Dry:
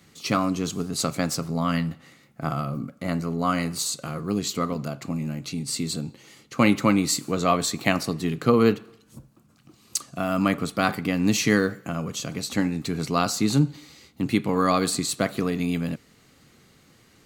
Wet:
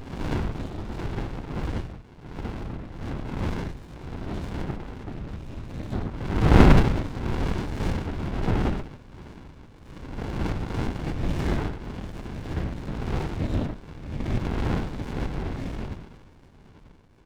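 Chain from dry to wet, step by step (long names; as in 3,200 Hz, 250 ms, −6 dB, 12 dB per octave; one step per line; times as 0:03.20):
peak hold with a rise ahead of every peak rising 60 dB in 1.06 s
low-shelf EQ 260 Hz −7 dB
single-tap delay 105 ms −7 dB
gain on a spectral selection 0:05.92–0:06.81, 230–1,900 Hz +12 dB
on a send: delay with a band-pass on its return 714 ms, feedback 56%, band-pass 1,500 Hz, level −14.5 dB
on the sum: linear-prediction vocoder at 8 kHz whisper
windowed peak hold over 65 samples
level −2 dB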